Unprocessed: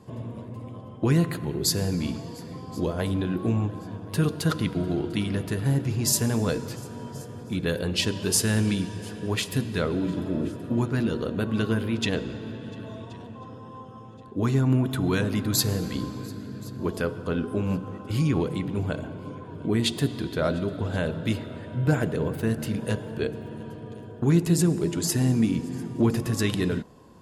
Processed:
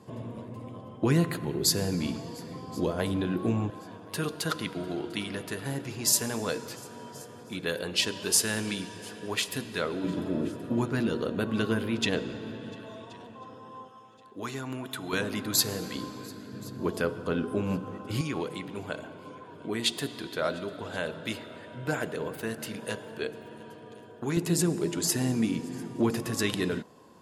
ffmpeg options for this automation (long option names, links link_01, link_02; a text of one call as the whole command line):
ffmpeg -i in.wav -af "asetnsamples=nb_out_samples=441:pad=0,asendcmd='3.7 highpass f 570;10.04 highpass f 210;12.76 highpass f 460;13.88 highpass f 1200;15.13 highpass f 450;16.53 highpass f 190;18.21 highpass f 680;24.37 highpass f 310',highpass=frequency=170:poles=1" out.wav